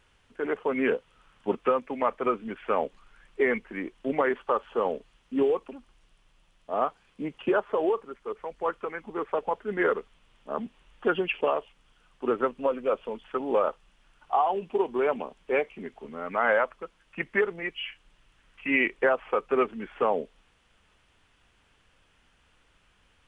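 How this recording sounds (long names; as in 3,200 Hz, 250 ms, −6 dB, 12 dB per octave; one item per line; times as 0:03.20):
background noise floor −66 dBFS
spectral slope −3.0 dB per octave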